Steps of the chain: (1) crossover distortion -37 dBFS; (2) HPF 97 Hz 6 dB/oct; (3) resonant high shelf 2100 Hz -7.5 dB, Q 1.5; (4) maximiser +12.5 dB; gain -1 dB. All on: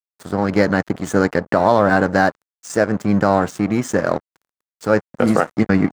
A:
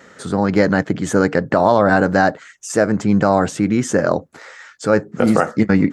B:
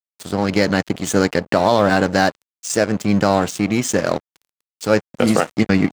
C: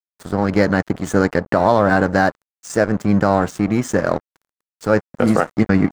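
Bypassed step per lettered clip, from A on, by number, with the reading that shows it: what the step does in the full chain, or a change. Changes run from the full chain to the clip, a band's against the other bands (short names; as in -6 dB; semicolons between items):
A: 1, distortion -14 dB; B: 3, 4 kHz band +9.0 dB; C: 2, 125 Hz band +2.0 dB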